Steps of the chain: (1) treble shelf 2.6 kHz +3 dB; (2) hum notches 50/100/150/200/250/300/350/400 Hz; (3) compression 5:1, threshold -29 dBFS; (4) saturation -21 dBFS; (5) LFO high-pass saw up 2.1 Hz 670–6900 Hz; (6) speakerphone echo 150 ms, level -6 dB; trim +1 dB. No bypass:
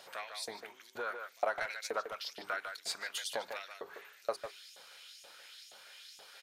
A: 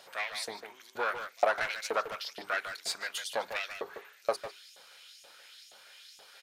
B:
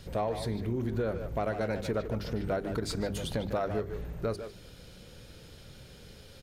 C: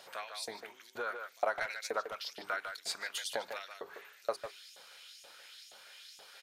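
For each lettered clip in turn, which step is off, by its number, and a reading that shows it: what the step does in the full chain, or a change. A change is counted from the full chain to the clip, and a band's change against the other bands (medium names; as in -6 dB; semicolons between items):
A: 3, mean gain reduction 3.0 dB; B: 5, 250 Hz band +25.0 dB; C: 4, distortion -24 dB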